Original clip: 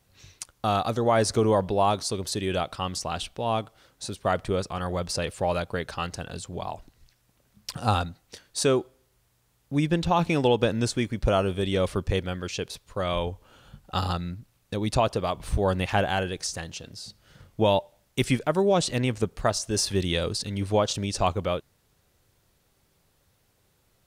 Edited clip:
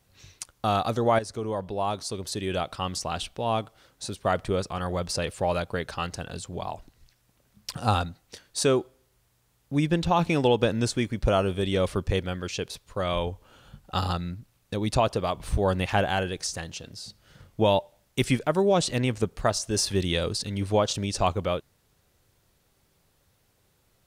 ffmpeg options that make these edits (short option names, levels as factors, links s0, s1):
-filter_complex "[0:a]asplit=2[s0][s1];[s0]atrim=end=1.19,asetpts=PTS-STARTPTS,afade=t=out:st=1.186:d=0.004:c=hsin:silence=0.223872[s2];[s1]atrim=start=1.19,asetpts=PTS-STARTPTS,afade=t=in:d=1.69:silence=0.223872[s3];[s2][s3]concat=n=2:v=0:a=1"